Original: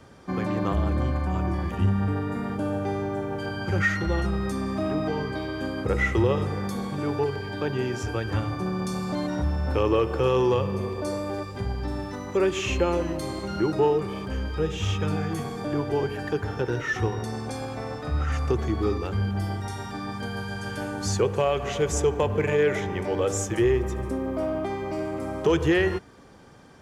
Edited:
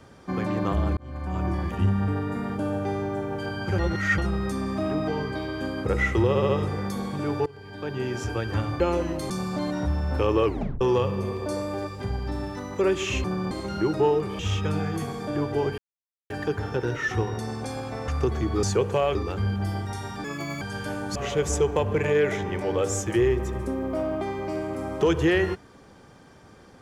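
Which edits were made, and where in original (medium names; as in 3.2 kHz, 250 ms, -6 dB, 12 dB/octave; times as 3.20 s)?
0.97–1.46 s: fade in
3.79–4.18 s: reverse
6.28 s: stutter 0.07 s, 4 plays
7.25–7.98 s: fade in, from -20.5 dB
8.59–8.86 s: swap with 12.80–13.30 s
10.01 s: tape stop 0.36 s
14.18–14.76 s: delete
16.15 s: insert silence 0.52 s
17.93–18.35 s: delete
19.99–20.53 s: speed 144%
21.07–21.59 s: move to 18.90 s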